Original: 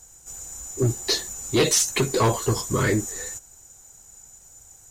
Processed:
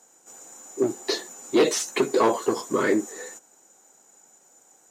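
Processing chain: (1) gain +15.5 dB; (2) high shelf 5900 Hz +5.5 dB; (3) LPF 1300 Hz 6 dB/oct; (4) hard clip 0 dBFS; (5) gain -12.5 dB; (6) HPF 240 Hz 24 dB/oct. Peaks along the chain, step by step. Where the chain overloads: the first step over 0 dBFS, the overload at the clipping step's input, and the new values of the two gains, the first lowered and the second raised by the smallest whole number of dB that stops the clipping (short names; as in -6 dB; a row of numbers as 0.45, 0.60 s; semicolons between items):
+4.0, +8.0, +3.0, 0.0, -12.5, -8.0 dBFS; step 1, 3.0 dB; step 1 +12.5 dB, step 5 -9.5 dB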